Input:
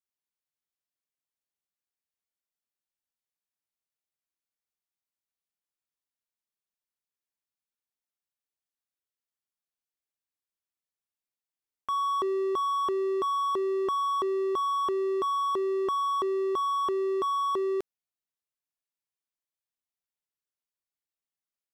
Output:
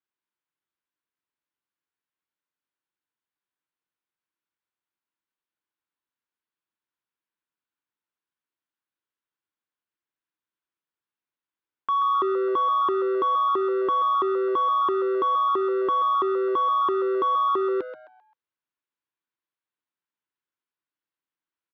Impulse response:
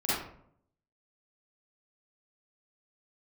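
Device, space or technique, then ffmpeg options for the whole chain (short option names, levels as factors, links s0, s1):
frequency-shifting delay pedal into a guitar cabinet: -filter_complex "[0:a]asplit=5[s0][s1][s2][s3][s4];[s1]adelay=131,afreqshift=120,volume=0.282[s5];[s2]adelay=262,afreqshift=240,volume=0.0955[s6];[s3]adelay=393,afreqshift=360,volume=0.0327[s7];[s4]adelay=524,afreqshift=480,volume=0.0111[s8];[s0][s5][s6][s7][s8]amix=inputs=5:normalize=0,highpass=82,equalizer=f=320:t=q:w=4:g=7,equalizer=f=670:t=q:w=4:g=-4,equalizer=f=1000:t=q:w=4:g=6,equalizer=f=1500:t=q:w=4:g=6,lowpass=f=3700:w=0.5412,lowpass=f=3700:w=1.3066,volume=1.19"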